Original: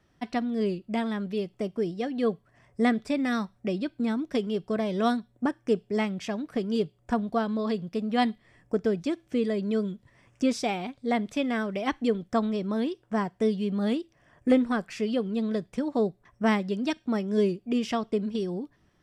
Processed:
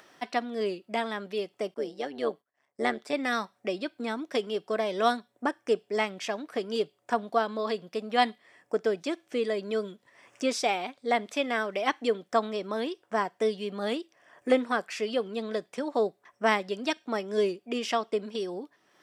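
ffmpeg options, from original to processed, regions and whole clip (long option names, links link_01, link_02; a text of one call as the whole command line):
ffmpeg -i in.wav -filter_complex "[0:a]asettb=1/sr,asplit=3[link_01][link_02][link_03];[link_01]atrim=end=1.744[link_04];[link_02]atrim=start=1.74:end=3.13,asetpts=PTS-STARTPTS,afade=type=in:duration=0.004:curve=qsin,afade=type=out:start_time=1.386:duration=0.004:curve=qsin,agate=range=-33dB:threshold=-51dB:ratio=3:release=100:detection=peak,bandreject=frequency=2500:width=19,tremolo=f=140:d=0.71[link_05];[link_03]atrim=start=3.126[link_06];[link_04][link_05]acrossfade=duration=0.004:curve1=hsin:curve2=qsin[link_07];[link_07][link_06]acrossfade=duration=0.004:curve1=qsin:curve2=hsin,highpass=460,acompressor=mode=upward:threshold=-50dB:ratio=2.5,volume=3.5dB" out.wav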